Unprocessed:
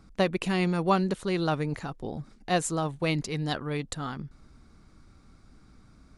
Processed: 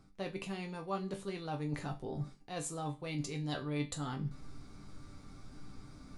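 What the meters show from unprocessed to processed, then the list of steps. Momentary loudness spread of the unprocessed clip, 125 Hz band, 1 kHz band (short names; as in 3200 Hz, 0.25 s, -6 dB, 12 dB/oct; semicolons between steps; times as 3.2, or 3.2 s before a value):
12 LU, -8.0 dB, -12.0 dB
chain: bell 1600 Hz -3 dB 0.77 oct; reverse; compressor 10:1, threshold -41 dBFS, peak gain reduction 22 dB; reverse; resonator bank G2 sus4, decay 0.21 s; Schroeder reverb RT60 0.38 s, combs from 33 ms, DRR 15.5 dB; gain +15.5 dB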